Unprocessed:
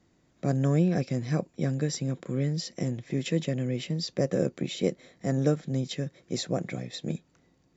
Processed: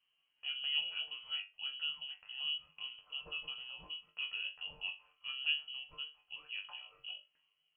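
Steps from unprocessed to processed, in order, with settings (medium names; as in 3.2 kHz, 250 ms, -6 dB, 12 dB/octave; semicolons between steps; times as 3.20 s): chord resonator G2 fifth, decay 0.25 s; frequency inversion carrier 3.1 kHz; trim -3 dB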